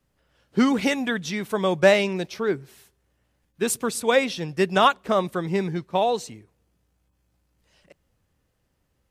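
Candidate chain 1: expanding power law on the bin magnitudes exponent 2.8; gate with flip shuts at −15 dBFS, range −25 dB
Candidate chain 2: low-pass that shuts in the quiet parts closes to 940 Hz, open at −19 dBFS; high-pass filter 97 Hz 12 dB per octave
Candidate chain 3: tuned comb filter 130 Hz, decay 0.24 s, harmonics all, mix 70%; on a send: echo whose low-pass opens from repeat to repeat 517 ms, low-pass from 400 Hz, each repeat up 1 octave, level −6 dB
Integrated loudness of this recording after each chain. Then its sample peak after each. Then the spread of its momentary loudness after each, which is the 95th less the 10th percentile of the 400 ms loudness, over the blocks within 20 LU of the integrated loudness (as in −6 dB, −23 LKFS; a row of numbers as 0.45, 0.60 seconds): −30.0, −23.5, −30.0 LKFS; −14.0, −4.0, −10.5 dBFS; 9, 10, 17 LU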